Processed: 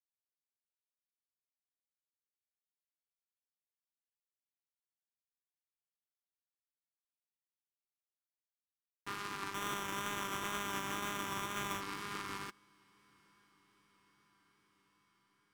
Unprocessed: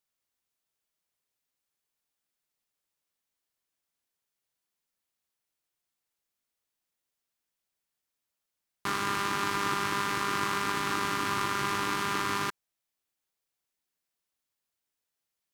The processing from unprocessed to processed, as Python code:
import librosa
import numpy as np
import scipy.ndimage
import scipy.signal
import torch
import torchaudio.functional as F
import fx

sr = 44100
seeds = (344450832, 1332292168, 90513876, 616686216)

y = fx.self_delay(x, sr, depth_ms=0.095)
y = fx.echo_diffused(y, sr, ms=946, feedback_pct=72, wet_db=-12.5)
y = fx.sample_hold(y, sr, seeds[0], rate_hz=4600.0, jitter_pct=0, at=(9.53, 11.8), fade=0.02)
y = fx.wow_flutter(y, sr, seeds[1], rate_hz=2.1, depth_cents=25.0)
y = fx.buffer_glitch(y, sr, at_s=(8.81,), block=1024, repeats=10)
y = fx.upward_expand(y, sr, threshold_db=-41.0, expansion=2.5)
y = y * librosa.db_to_amplitude(-8.0)